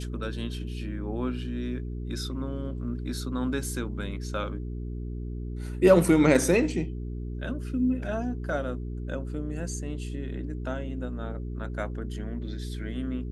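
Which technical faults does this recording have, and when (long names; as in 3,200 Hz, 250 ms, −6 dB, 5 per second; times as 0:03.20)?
mains hum 60 Hz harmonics 7 −34 dBFS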